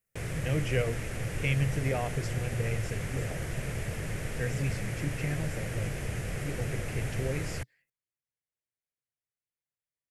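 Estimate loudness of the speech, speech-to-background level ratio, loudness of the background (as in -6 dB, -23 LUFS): -35.0 LUFS, 1.0 dB, -36.0 LUFS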